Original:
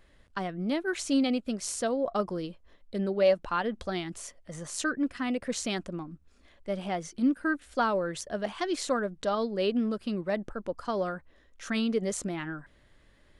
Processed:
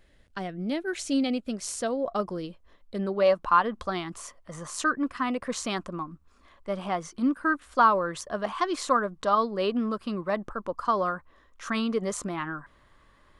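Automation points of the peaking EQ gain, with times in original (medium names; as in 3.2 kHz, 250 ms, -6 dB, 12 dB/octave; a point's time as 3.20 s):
peaking EQ 1.1 kHz 0.58 oct
1.07 s -5 dB
1.54 s +2 dB
2.48 s +2 dB
3.36 s +14 dB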